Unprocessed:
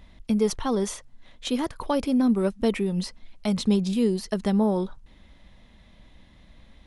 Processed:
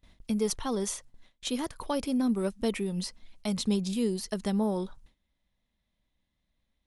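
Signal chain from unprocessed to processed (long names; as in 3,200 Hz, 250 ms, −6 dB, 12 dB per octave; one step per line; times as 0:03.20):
noise gate with hold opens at −39 dBFS
high-shelf EQ 4,700 Hz +9.5 dB
level −6 dB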